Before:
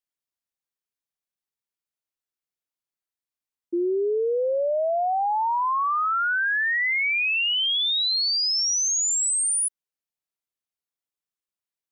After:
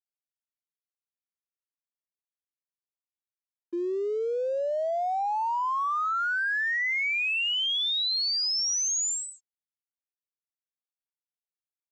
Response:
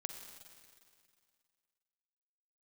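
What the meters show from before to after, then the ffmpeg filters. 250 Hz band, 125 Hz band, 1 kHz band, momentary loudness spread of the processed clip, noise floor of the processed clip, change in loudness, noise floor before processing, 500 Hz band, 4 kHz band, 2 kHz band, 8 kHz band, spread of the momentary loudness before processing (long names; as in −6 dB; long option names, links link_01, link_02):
−5.5 dB, can't be measured, −4.0 dB, 6 LU, below −85 dBFS, −4.5 dB, below −85 dBFS, −5.0 dB, −4.0 dB, −4.0 dB, −6.5 dB, 4 LU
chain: -af "lowshelf=frequency=210:gain=-6.5,aresample=16000,aeval=exprs='sgn(val(0))*max(abs(val(0))-0.00355,0)':channel_layout=same,aresample=44100,volume=-3.5dB"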